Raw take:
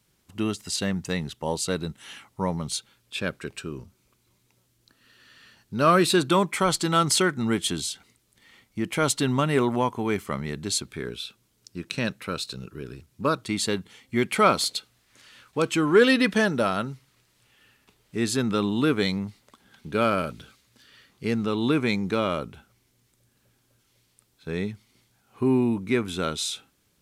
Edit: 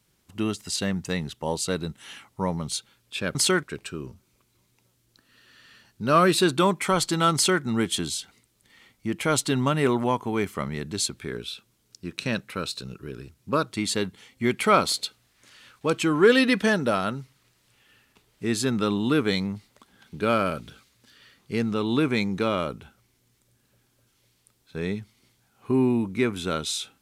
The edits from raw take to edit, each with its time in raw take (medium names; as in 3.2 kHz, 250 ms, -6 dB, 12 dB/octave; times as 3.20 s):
7.06–7.34 s: copy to 3.35 s